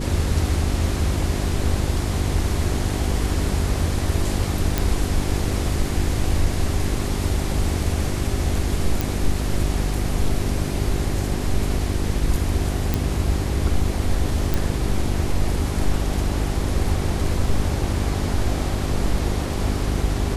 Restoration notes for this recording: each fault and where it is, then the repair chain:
mains hum 50 Hz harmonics 8 −26 dBFS
0:04.78: click
0:09.01: click
0:12.94: click
0:14.54: click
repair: click removal
hum removal 50 Hz, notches 8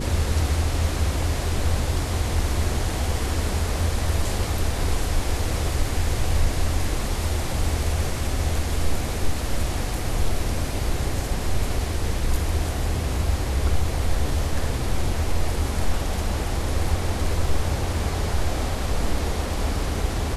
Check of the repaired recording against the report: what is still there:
none of them is left

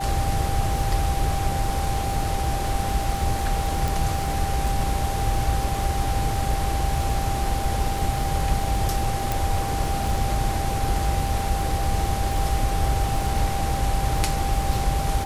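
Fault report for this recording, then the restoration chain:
surface crackle 35 per second −28 dBFS
whistle 790 Hz −28 dBFS
0:03.88: click
0:09.32: click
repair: click removal
notch filter 790 Hz, Q 30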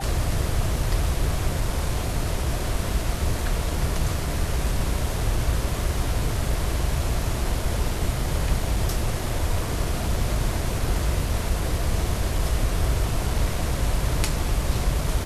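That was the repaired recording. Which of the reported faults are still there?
0:03.88: click

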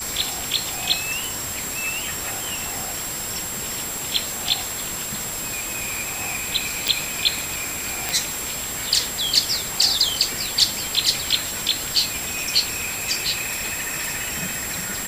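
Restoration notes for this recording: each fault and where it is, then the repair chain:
surface crackle 31 per second −31 dBFS
whistle 7,600 Hz −30 dBFS
0:06.88: click
0:08.09: click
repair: click removal
notch filter 7,600 Hz, Q 30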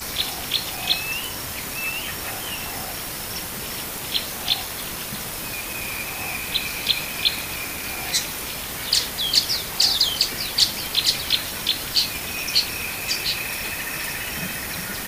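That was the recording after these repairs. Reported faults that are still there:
none of them is left

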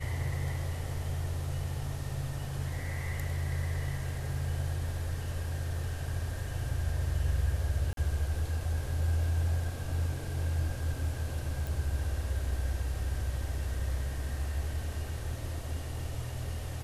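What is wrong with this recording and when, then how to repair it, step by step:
0:07.93–0:07.97: drop-out 42 ms
0:11.67: click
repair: click removal
repair the gap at 0:07.93, 42 ms

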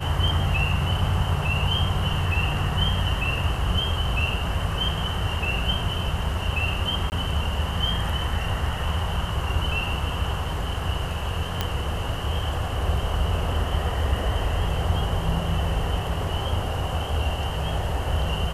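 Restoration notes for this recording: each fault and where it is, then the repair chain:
0:07.10–0:07.12: drop-out 19 ms
0:11.61: click −9 dBFS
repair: click removal
repair the gap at 0:07.10, 19 ms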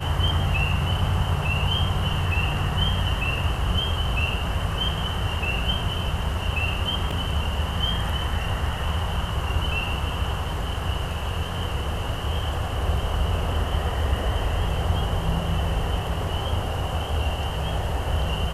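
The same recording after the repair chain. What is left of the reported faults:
none of them is left

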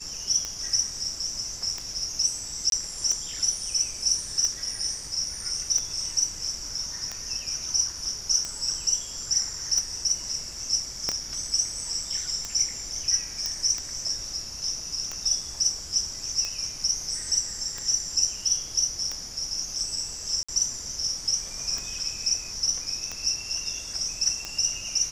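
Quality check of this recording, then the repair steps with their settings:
scratch tick 45 rpm −17 dBFS
0:02.70–0:02.72: drop-out 22 ms
0:11.09: click −12 dBFS
0:13.46: click −14 dBFS
0:20.43–0:20.48: drop-out 55 ms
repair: click removal
repair the gap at 0:02.70, 22 ms
repair the gap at 0:20.43, 55 ms

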